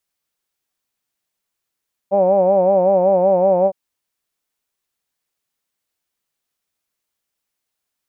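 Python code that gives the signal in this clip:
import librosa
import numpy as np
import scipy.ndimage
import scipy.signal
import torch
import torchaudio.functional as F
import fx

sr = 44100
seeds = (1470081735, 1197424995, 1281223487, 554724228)

y = fx.vowel(sr, seeds[0], length_s=1.61, word='hawed', hz=191.0, glide_st=-0.5, vibrato_hz=5.3, vibrato_st=0.9)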